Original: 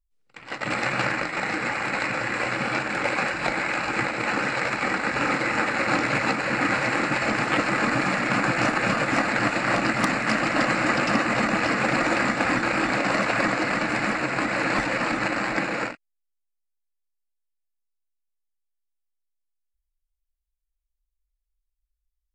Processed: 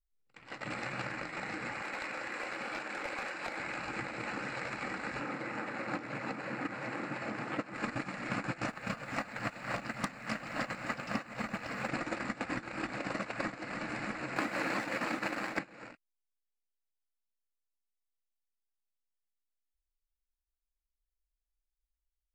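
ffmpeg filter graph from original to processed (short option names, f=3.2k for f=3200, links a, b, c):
-filter_complex "[0:a]asettb=1/sr,asplit=3[a][b][c];[a]atrim=end=1.824[d];[b]atrim=start=1.82:end=3.6,asetpts=PTS-STARTPTS,afade=t=in:d=0.004:c=qsin,afade=t=out:st=1.776:d=0.004:c=qsin,highpass=310,aeval=exprs='clip(val(0),-1,0.1)':c=same[e];[c]atrim=start=3.596[f];[d][e]acrossfade=d=0.004:c1=hsin:c2=qsin[g];[g][f]acrossfade=d=0.004:c1=qsin:c2=hsin,asettb=1/sr,asplit=3[h][i][j];[h]atrim=end=5.204[k];[i]atrim=start=5.2:end=7.74,asetpts=PTS-STARTPTS,afade=t=in:d=0.004:c=qsin,afade=t=out:st=2.536:d=0.004:c=qsin,highpass=120,highshelf=f=2.3k:g=-7.5[l];[j]atrim=start=7.736[m];[k][l]acrossfade=d=0.004:c1=hsin:c2=qsin[n];[n][m]acrossfade=d=0.004:c1=qsin:c2=hsin,asettb=1/sr,asplit=3[o][p][q];[o]atrim=end=8.684[r];[p]atrim=start=8.68:end=11.89,asetpts=PTS-STARTPTS,afade=t=in:d=0.004:c=qsin,afade=t=out:st=3.206:d=0.004:c=qsin,equalizer=f=330:t=o:w=0.46:g=-7.5,acrusher=bits=9:dc=4:mix=0:aa=0.000001[s];[q]atrim=start=11.886[t];[r][s]acrossfade=d=0.004:c1=hsin:c2=qsin[u];[u][t]acrossfade=d=0.004:c1=qsin:c2=hsin,asettb=1/sr,asplit=3[v][w][x];[v]atrim=end=14.364[y];[w]atrim=start=14.36:end=15.59,asetpts=PTS-STARTPTS,afade=t=in:d=0.004:c=qsin,afade=t=out:st=1.226:d=0.004:c=qsin,highpass=180,acontrast=51,aeval=exprs='sgn(val(0))*max(abs(val(0))-0.0158,0)':c=same[z];[x]atrim=start=15.586[aa];[y][z]acrossfade=d=0.004:c1=hsin:c2=qsin[ab];[ab][aa]acrossfade=d=0.004:c1=qsin:c2=hsin,lowshelf=f=250:g=4,agate=range=-20dB:threshold=-19dB:ratio=16:detection=peak,acompressor=threshold=-42dB:ratio=6,volume=8dB"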